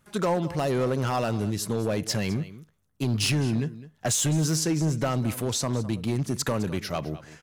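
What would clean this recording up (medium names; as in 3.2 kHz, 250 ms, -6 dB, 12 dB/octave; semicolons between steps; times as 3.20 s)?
clip repair -19.5 dBFS; inverse comb 208 ms -17 dB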